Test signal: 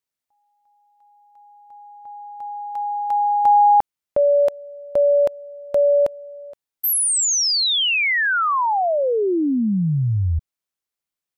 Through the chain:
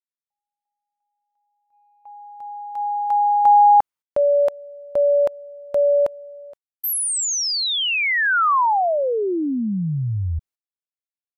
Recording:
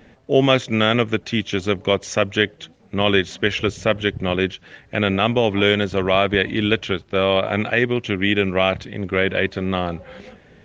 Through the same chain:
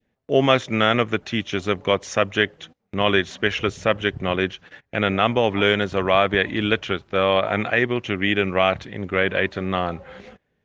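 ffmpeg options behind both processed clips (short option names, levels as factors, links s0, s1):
-af "agate=range=0.1:threshold=0.00891:ratio=16:release=130:detection=rms,adynamicequalizer=threshold=0.0282:dfrequency=1100:dqfactor=0.82:tfrequency=1100:tqfactor=0.82:attack=5:release=100:ratio=0.375:range=3:mode=boostabove:tftype=bell,volume=0.668"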